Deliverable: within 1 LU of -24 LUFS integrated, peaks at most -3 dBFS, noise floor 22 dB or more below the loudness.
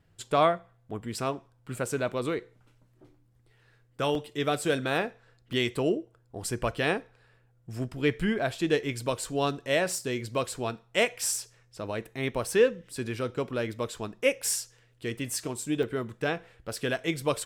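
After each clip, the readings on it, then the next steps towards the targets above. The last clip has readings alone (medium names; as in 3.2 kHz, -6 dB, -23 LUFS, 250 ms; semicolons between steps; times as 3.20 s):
dropouts 4; longest dropout 1.8 ms; loudness -30.0 LUFS; peak level -10.5 dBFS; loudness target -24.0 LUFS
-> interpolate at 4.15/5.53/11.39/15.83 s, 1.8 ms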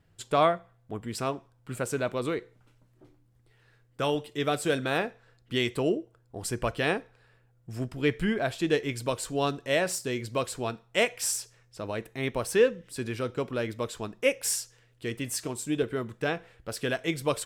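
dropouts 0; loudness -30.0 LUFS; peak level -10.5 dBFS; loudness target -24.0 LUFS
-> trim +6 dB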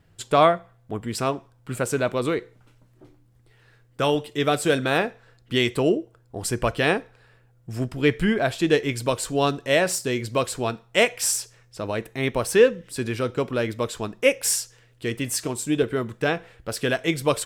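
loudness -24.0 LUFS; peak level -4.5 dBFS; noise floor -59 dBFS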